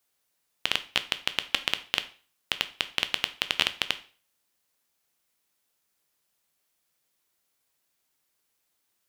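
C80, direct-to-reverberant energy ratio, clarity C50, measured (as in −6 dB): 20.5 dB, 10.5 dB, 16.0 dB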